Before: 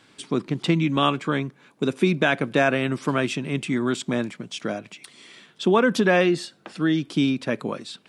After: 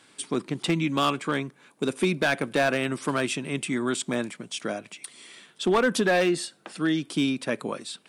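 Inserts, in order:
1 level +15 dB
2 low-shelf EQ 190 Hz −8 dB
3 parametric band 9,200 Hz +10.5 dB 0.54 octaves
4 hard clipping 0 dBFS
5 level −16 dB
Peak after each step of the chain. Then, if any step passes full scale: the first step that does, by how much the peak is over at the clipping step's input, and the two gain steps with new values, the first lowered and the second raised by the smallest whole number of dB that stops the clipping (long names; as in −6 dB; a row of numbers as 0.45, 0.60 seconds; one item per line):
+8.5, +8.0, +8.0, 0.0, −16.0 dBFS
step 1, 8.0 dB
step 1 +7 dB, step 5 −8 dB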